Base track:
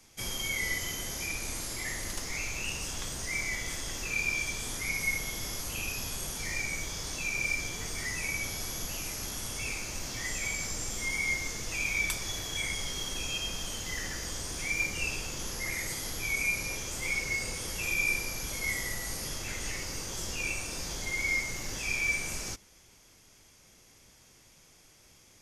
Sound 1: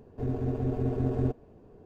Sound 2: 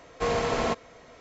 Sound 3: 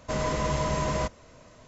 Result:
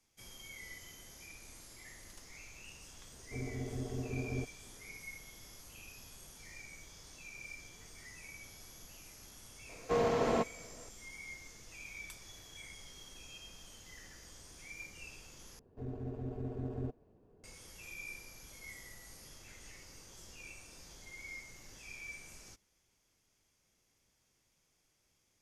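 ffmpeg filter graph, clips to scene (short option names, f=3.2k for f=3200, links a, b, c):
-filter_complex "[1:a]asplit=2[a][b];[0:a]volume=-17.5dB[c];[2:a]equalizer=f=310:w=0.34:g=8.5[d];[c]asplit=2[e][f];[e]atrim=end=15.594[g];[b]atrim=end=1.85,asetpts=PTS-STARTPTS,volume=-11.5dB[h];[f]atrim=start=17.436[i];[a]atrim=end=1.85,asetpts=PTS-STARTPTS,volume=-10.5dB,afade=t=in:d=0.004:c=hsin,afade=t=out:st=1.846:d=0.004:c=hsin,adelay=138033S[j];[d]atrim=end=1.2,asetpts=PTS-STARTPTS,volume=-10.5dB,afade=t=in:d=0.004:c=hsin,afade=t=out:st=1.196:d=0.004:c=hsin,adelay=9690[k];[g][h]acrossfade=d=0.004:c1=hsin:c2=hsin[l];[l][i]acrossfade=d=0.004:c1=hsin:c2=hsin[m];[m][j][k]amix=inputs=3:normalize=0"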